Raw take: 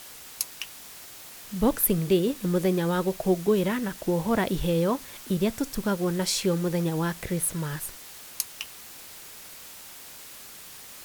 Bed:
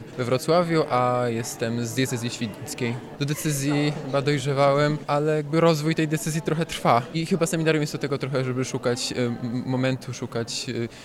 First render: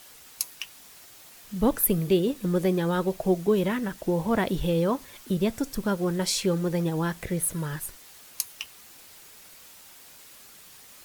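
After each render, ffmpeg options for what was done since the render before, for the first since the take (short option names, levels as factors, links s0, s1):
-af "afftdn=nr=6:nf=-45"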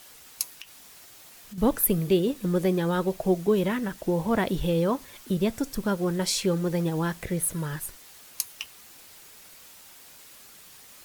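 -filter_complex "[0:a]asettb=1/sr,asplit=3[s0][s1][s2];[s0]atrim=end=0.604[s3];[s1]atrim=start=0.6:end=1.58,asetpts=PTS-STARTPTS,afade=t=in:d=0.004:c=qsin,afade=t=out:st=0.976:d=0.004:c=qsin,acompressor=threshold=0.0126:ratio=6:attack=3.2:release=140:knee=1:detection=peak[s4];[s2]atrim=start=1.576[s5];[s3][s4]acrossfade=d=0.004:c1=hsin:c2=qsin[s6];[s6][s5]acrossfade=d=0.004:c1=qsin:c2=hsin,asettb=1/sr,asplit=3[s7][s8][s9];[s7]atrim=end=6.664[s10];[s8]atrim=start=6.66:end=7.17,asetpts=PTS-STARTPTS,afade=t=in:d=0.004:c=qsin,afade=t=out:st=0.506:d=0.004:c=qsin,acrusher=bits=7:mix=0:aa=0.5[s11];[s9]atrim=start=7.166[s12];[s10][s11]acrossfade=d=0.004:c1=hsin:c2=qsin[s13];[s13][s12]acrossfade=d=0.004:c1=qsin:c2=hsin"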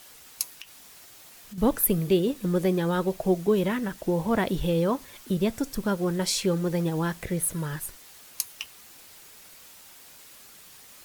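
-af anull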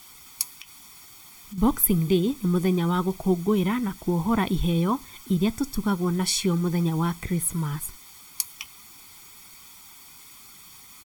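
-af "equalizer=f=1400:w=7.7:g=-2,aecho=1:1:0.9:0.76"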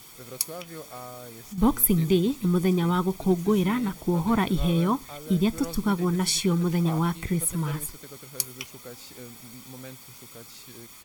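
-filter_complex "[1:a]volume=0.106[s0];[0:a][s0]amix=inputs=2:normalize=0"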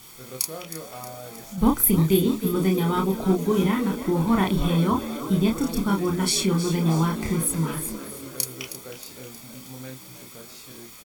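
-filter_complex "[0:a]asplit=2[s0][s1];[s1]adelay=31,volume=0.708[s2];[s0][s2]amix=inputs=2:normalize=0,asplit=2[s3][s4];[s4]asplit=6[s5][s6][s7][s8][s9][s10];[s5]adelay=315,afreqshift=56,volume=0.251[s11];[s6]adelay=630,afreqshift=112,volume=0.135[s12];[s7]adelay=945,afreqshift=168,volume=0.0733[s13];[s8]adelay=1260,afreqshift=224,volume=0.0394[s14];[s9]adelay=1575,afreqshift=280,volume=0.0214[s15];[s10]adelay=1890,afreqshift=336,volume=0.0115[s16];[s11][s12][s13][s14][s15][s16]amix=inputs=6:normalize=0[s17];[s3][s17]amix=inputs=2:normalize=0"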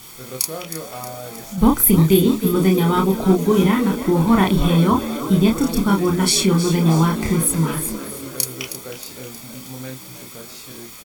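-af "volume=2,alimiter=limit=0.794:level=0:latency=1"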